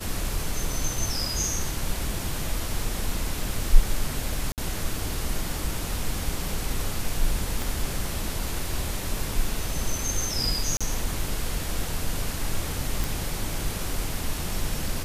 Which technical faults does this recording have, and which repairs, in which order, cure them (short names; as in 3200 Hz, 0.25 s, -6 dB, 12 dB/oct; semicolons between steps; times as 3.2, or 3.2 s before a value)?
4.52–4.58 gap 58 ms
7.62 pop
10.77–10.81 gap 36 ms
13.04 pop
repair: de-click; interpolate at 4.52, 58 ms; interpolate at 10.77, 36 ms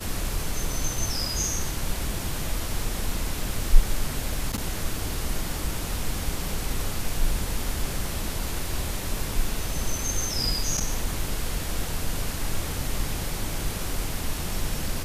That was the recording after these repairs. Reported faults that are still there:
7.62 pop